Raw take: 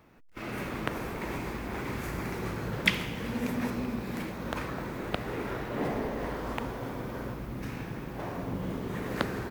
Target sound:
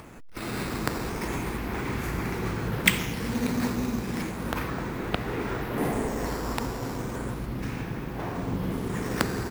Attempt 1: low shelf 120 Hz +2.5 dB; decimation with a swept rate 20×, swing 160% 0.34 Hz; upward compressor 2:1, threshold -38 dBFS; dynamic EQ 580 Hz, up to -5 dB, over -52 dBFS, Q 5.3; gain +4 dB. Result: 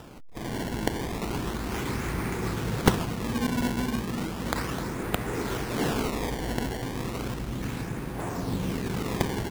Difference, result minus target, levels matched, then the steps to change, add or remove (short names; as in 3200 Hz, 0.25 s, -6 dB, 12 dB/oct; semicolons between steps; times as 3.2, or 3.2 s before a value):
decimation with a swept rate: distortion +11 dB
change: decimation with a swept rate 4×, swing 160% 0.34 Hz